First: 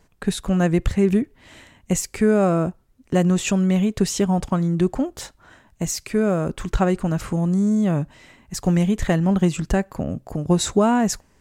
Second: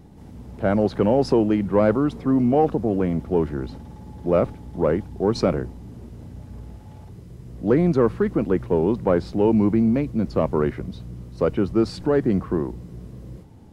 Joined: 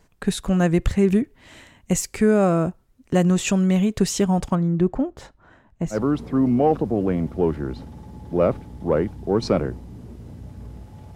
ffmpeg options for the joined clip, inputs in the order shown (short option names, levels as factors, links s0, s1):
-filter_complex "[0:a]asettb=1/sr,asplit=3[s0][s1][s2];[s0]atrim=end=4.554[s3];[s1]atrim=start=4.55:end=6.02,asetpts=PTS-STARTPTS,afade=t=in:d=0.004:c=qsin,afade=t=out:st=1.466:d=0.004:c=qsin,lowpass=f=1200:p=1[s4];[s2]atrim=start=6.016[s5];[s3][s4]acrossfade=d=0.004:c1=hsin:c2=qsin[s6];[s6][s5]acrossfade=d=0.004:c1=qsin:c2=hsin,apad=whole_dur=11.15,atrim=end=11.15,atrim=end=6.02,asetpts=PTS-STARTPTS[s7];[1:a]atrim=start=1.83:end=7.08,asetpts=PTS-STARTPTS[s8];[s7][s8]acrossfade=d=0.12:c1=tri:c2=tri"